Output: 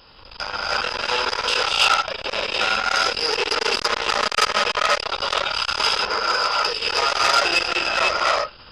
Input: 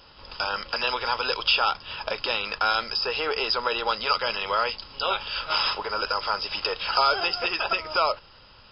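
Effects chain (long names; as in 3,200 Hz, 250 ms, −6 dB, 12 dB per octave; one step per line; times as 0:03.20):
0:03.31–0:05.08: comb filter 4.8 ms, depth 89%
0:05.83–0:06.60: low-shelf EQ 240 Hz −9 dB
reverb whose tail is shaped and stops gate 350 ms rising, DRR −6 dB
saturating transformer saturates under 3,900 Hz
level +2 dB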